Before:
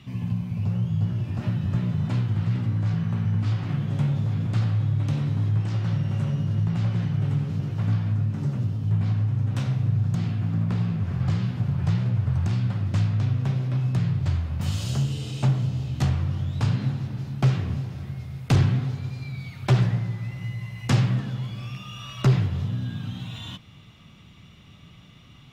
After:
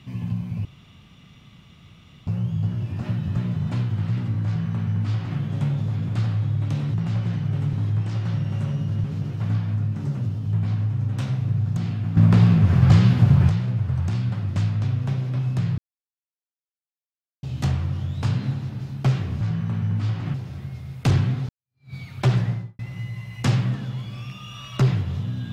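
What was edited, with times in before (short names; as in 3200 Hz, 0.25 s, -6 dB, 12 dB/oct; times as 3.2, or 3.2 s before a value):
0.65 insert room tone 1.62 s
2.84–3.77 copy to 17.79
6.63–7.42 move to 5.32
10.55–11.87 gain +10 dB
14.16–15.81 mute
18.94–19.39 fade in exponential
19.96–20.24 studio fade out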